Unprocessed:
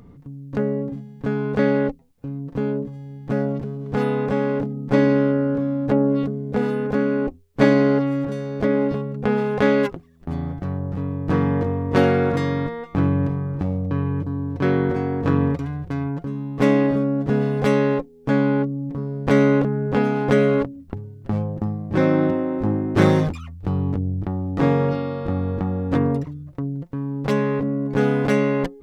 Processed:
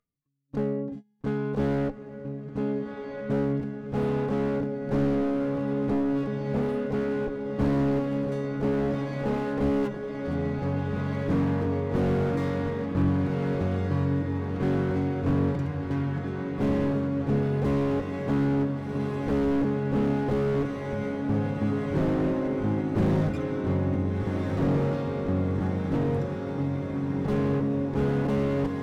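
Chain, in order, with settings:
noise reduction from a noise print of the clip's start 20 dB
noise gate −33 dBFS, range −20 dB
on a send: feedback delay with all-pass diffusion 1,520 ms, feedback 66%, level −8 dB
on the sum: slew-rate limiting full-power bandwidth 47 Hz
level −5 dB

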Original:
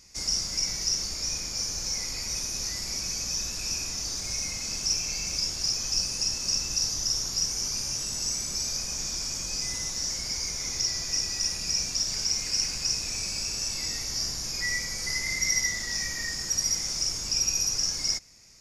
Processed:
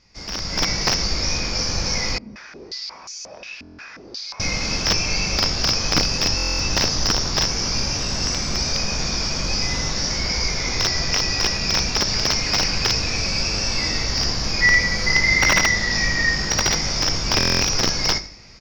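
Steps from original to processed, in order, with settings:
parametric band 4,800 Hz +4.5 dB 0.57 octaves
mains-hum notches 50/100/150/200/250/300/350/400 Hz
double-tracking delay 20 ms −7.5 dB
repeating echo 83 ms, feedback 37%, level −15 dB
wrap-around overflow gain 15 dB
high-frequency loss of the air 270 metres
automatic gain control gain up to 13 dB
buffer that repeats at 0:03.57/0:06.36/0:17.38, samples 1,024, times 9
0:02.18–0:04.40: band-pass on a step sequencer 5.6 Hz 230–7,000 Hz
level +3.5 dB

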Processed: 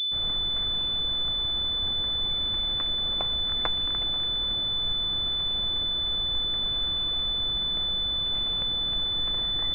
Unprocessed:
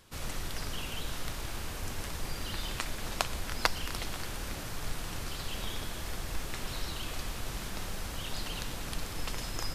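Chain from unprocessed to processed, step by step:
notch filter 930 Hz, Q 16
switching amplifier with a slow clock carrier 3,500 Hz

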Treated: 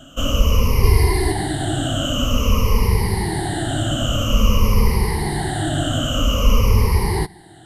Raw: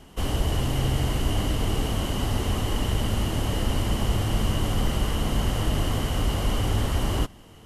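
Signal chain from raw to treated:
rippled gain that drifts along the octave scale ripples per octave 0.85, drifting −0.5 Hz, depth 23 dB
0:00.83–0:01.32: comb filter 2.9 ms, depth 94%
level +1.5 dB

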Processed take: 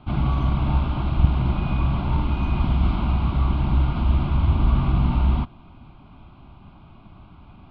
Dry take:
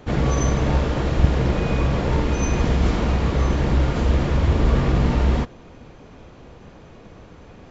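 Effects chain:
high-frequency loss of the air 210 metres
phaser with its sweep stopped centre 1,800 Hz, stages 6

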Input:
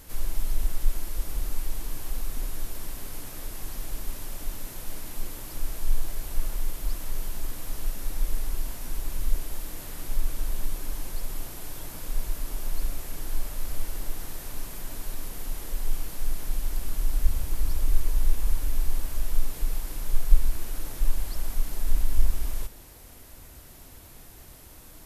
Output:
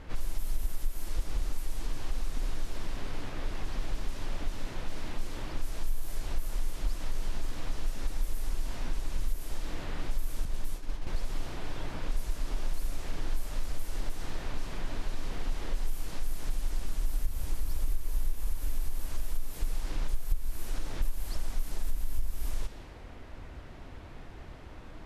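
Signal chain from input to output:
0:10.45–0:11.07: downward expander −21 dBFS
low-pass that shuts in the quiet parts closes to 2,300 Hz, open at −16 dBFS
downward compressor 5 to 1, threshold −28 dBFS, peak gain reduction 19 dB
level +4 dB

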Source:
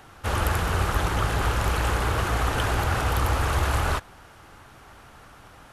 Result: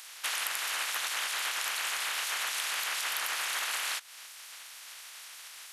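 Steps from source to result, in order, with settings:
ceiling on every frequency bin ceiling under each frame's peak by 27 dB
high-pass filter 1,200 Hz 12 dB per octave
downward compressor 4 to 1, threshold −34 dBFS, peak gain reduction 12.5 dB
surface crackle 55 per second −56 dBFS
level +2 dB

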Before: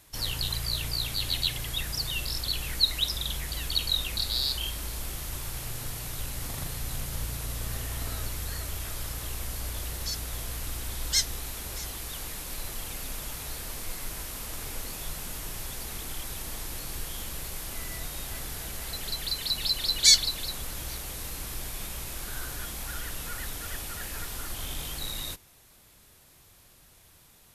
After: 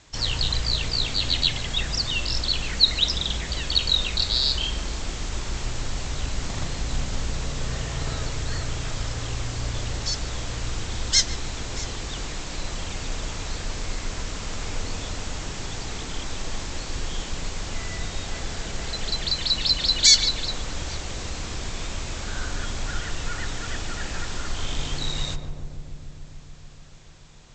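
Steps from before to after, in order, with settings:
Butterworth low-pass 7,700 Hz 96 dB per octave
feedback echo with a low-pass in the loop 144 ms, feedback 84%, low-pass 930 Hz, level −5 dB
boost into a limiter +9 dB
level −3 dB

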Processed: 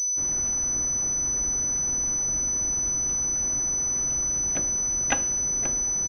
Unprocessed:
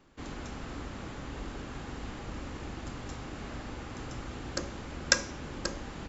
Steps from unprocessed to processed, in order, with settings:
pitch-shifted copies added −12 semitones −2 dB, +4 semitones −6 dB
switching amplifier with a slow clock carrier 6,000 Hz
level −2 dB

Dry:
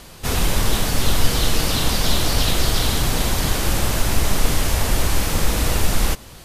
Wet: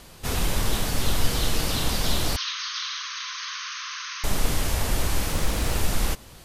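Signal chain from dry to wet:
0:02.36–0:04.24: linear-phase brick-wall band-pass 990–6,600 Hz
0:05.32–0:05.75: highs frequency-modulated by the lows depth 0.42 ms
level −5.5 dB

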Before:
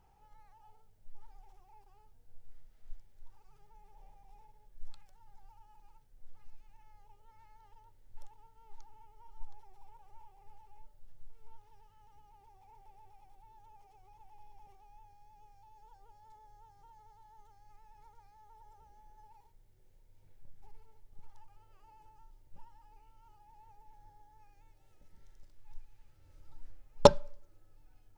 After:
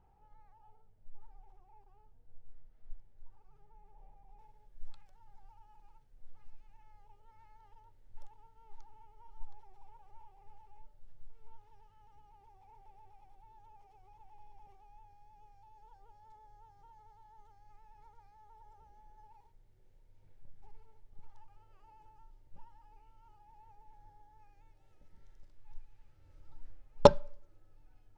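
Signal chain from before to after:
low-pass filter 1,100 Hz 6 dB per octave, from 0:04.39 3,400 Hz

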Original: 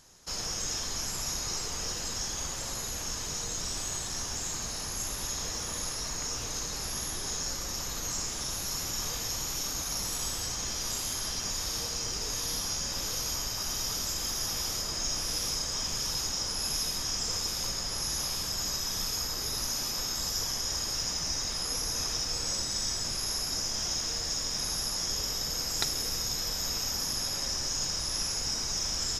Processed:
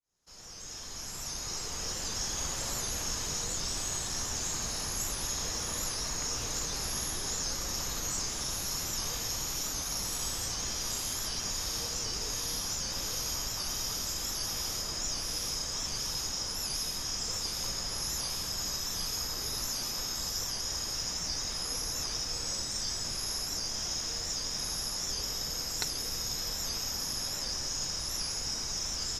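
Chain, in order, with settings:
fade in at the beginning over 3.34 s
speech leveller within 5 dB
wow of a warped record 78 rpm, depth 100 cents
level −1.5 dB

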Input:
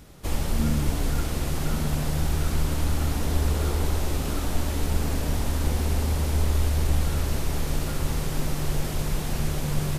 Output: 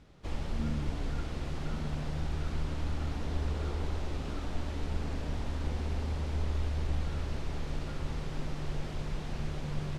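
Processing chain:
low-pass filter 4,400 Hz 12 dB per octave
level −9 dB

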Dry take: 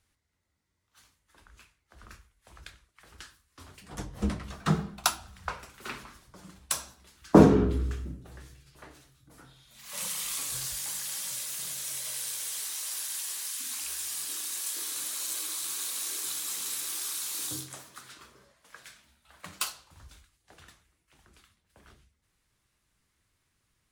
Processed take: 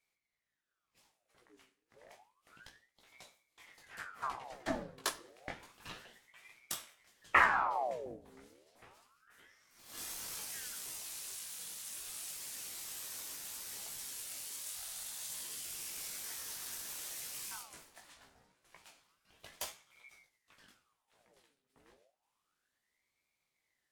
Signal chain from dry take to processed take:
chorus effect 0.65 Hz, delay 15.5 ms, depth 5 ms
ring modulator whose carrier an LFO sweeps 1,300 Hz, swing 75%, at 0.3 Hz
level −3.5 dB

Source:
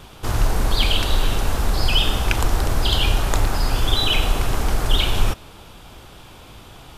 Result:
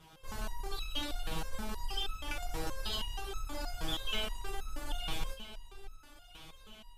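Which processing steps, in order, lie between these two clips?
harmonic generator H 6 −25 dB, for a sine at −3 dBFS
delay that swaps between a low-pass and a high-pass 651 ms, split 890 Hz, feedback 64%, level −11.5 dB
step-sequenced resonator 6.3 Hz 160–1,300 Hz
level −2 dB

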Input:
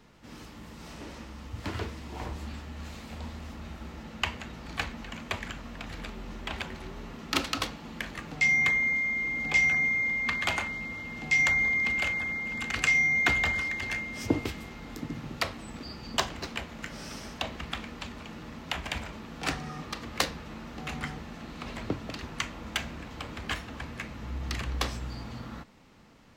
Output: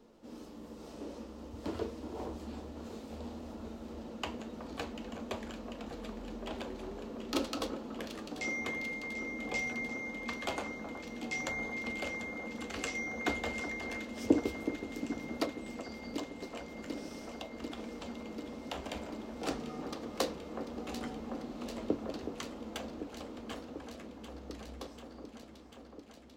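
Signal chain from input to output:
fade-out on the ending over 4.69 s
octave-band graphic EQ 125/250/500/2,000 Hz −10/+8/+10/−8 dB
0:15.45–0:17.78: downward compressor 4 to 1, threshold −35 dBFS, peak gain reduction 13.5 dB
flanger 0.51 Hz, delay 8.6 ms, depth 1.9 ms, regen −60%
delay that swaps between a low-pass and a high-pass 371 ms, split 1,700 Hz, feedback 88%, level −10 dB
level −3 dB

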